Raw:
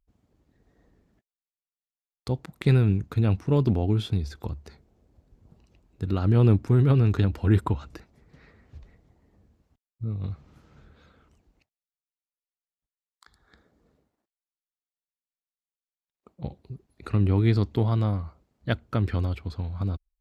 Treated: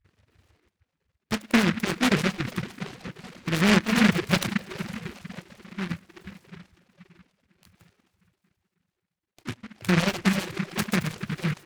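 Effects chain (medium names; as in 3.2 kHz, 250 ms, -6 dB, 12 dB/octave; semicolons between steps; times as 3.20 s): speed mistake 45 rpm record played at 78 rpm; peaking EQ 84 Hz +7.5 dB 1 oct; plate-style reverb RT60 4.4 s, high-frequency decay 0.8×, DRR 2 dB; vibrato 1.1 Hz 12 cents; early reflections 61 ms -18 dB, 71 ms -10.5 dB; reverb removal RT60 0.99 s; steep low-pass 3.2 kHz 72 dB/octave; reverb removal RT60 1.5 s; delay time shaken by noise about 1.7 kHz, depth 0.29 ms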